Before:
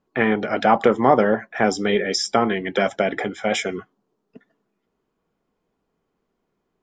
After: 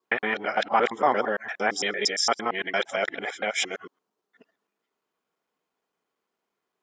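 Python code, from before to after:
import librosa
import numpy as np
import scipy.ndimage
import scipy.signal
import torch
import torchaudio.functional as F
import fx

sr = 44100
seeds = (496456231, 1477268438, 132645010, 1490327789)

y = fx.local_reverse(x, sr, ms=114.0)
y = fx.highpass(y, sr, hz=1200.0, slope=6)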